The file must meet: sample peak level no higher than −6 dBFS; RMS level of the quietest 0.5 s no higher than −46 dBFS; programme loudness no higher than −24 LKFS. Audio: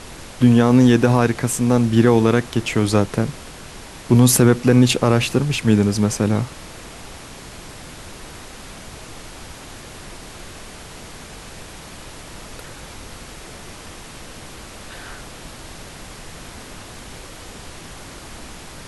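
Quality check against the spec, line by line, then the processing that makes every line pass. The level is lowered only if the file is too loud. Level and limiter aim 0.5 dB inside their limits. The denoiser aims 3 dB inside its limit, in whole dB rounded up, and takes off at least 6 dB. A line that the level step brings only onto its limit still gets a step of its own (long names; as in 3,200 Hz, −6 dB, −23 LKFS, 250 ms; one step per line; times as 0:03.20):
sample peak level −2.5 dBFS: out of spec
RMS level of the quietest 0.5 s −37 dBFS: out of spec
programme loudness −16.5 LKFS: out of spec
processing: broadband denoise 6 dB, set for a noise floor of −37 dBFS
level −8 dB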